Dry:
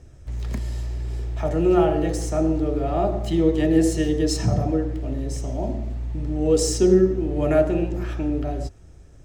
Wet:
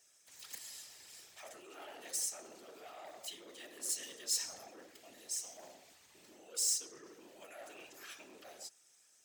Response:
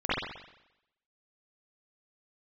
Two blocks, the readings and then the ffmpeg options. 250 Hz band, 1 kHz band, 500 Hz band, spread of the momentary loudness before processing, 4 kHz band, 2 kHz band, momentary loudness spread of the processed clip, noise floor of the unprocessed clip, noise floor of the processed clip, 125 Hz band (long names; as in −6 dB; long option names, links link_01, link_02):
−39.5 dB, −24.0 dB, −33.0 dB, 12 LU, −7.0 dB, −15.0 dB, 20 LU, −46 dBFS, −68 dBFS, below −40 dB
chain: -af "highpass=frequency=600:poles=1,afftfilt=real='hypot(re,im)*cos(2*PI*random(0))':imag='hypot(re,im)*sin(2*PI*random(1))':win_size=512:overlap=0.75,areverse,acompressor=threshold=-33dB:ratio=12,areverse,asoftclip=type=tanh:threshold=-31.5dB,aderivative,volume=8dB"